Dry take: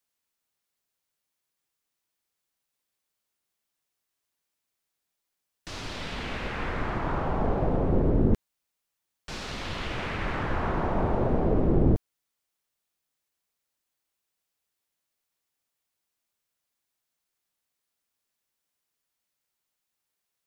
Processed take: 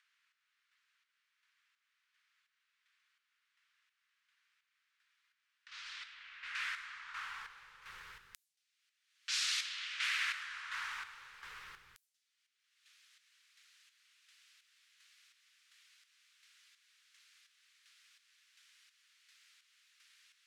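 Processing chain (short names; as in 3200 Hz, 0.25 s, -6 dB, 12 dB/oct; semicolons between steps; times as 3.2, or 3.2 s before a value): chopper 1.4 Hz, depth 60%, duty 45%; upward compressor, threshold -41 dBFS; high shelf 2200 Hz -10 dB, from 6.55 s +3 dB, from 7.82 s +8 dB; low-pass opened by the level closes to 2500 Hz, open at -27.5 dBFS; inverse Chebyshev high-pass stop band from 720 Hz, stop band 40 dB; high shelf 4500 Hz +7.5 dB; gain -2.5 dB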